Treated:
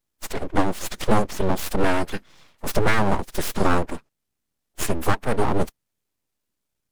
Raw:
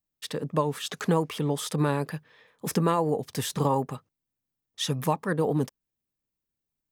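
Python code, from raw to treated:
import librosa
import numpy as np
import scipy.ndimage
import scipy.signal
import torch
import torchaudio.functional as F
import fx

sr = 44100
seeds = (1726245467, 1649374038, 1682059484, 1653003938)

y = fx.pitch_keep_formants(x, sr, semitones=-7.5)
y = np.abs(y)
y = y * 10.0 ** (8.5 / 20.0)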